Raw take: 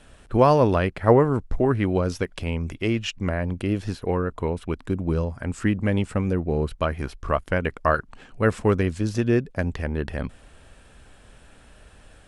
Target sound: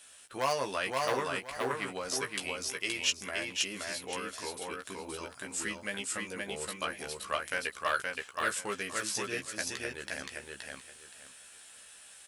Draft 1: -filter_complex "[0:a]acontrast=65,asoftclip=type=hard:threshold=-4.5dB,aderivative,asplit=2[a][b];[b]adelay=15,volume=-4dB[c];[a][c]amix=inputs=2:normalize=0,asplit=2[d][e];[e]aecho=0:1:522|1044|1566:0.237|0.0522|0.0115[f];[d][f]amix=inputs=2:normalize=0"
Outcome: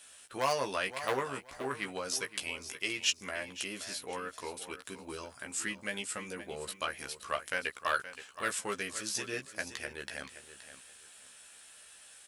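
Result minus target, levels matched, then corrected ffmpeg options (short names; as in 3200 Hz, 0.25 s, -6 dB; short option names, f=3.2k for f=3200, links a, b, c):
echo-to-direct -10 dB
-filter_complex "[0:a]acontrast=65,asoftclip=type=hard:threshold=-4.5dB,aderivative,asplit=2[a][b];[b]adelay=15,volume=-4dB[c];[a][c]amix=inputs=2:normalize=0,asplit=2[d][e];[e]aecho=0:1:522|1044|1566:0.75|0.165|0.0363[f];[d][f]amix=inputs=2:normalize=0"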